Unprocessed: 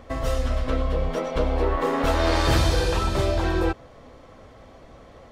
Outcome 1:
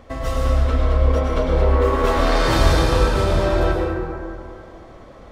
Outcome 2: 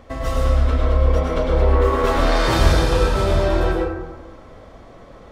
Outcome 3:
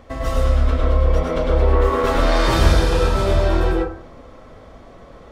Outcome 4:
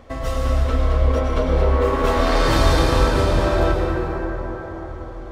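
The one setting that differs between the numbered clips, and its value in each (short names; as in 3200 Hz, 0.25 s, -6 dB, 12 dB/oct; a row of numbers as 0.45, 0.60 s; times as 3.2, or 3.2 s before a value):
plate-style reverb, RT60: 2.4, 1.1, 0.52, 5.2 s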